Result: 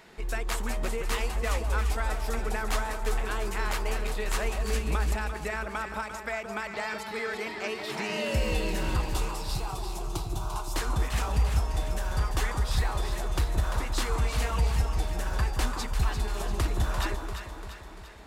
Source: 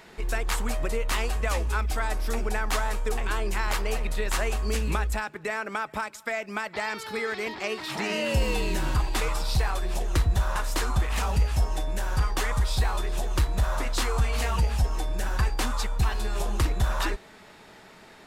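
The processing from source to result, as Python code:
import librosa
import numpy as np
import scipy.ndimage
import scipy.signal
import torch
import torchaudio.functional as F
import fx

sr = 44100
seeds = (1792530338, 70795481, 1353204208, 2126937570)

p1 = fx.fixed_phaser(x, sr, hz=360.0, stages=8, at=(9.1, 10.74))
p2 = p1 + fx.echo_alternate(p1, sr, ms=172, hz=1000.0, feedback_pct=73, wet_db=-5.0, dry=0)
y = p2 * librosa.db_to_amplitude(-3.5)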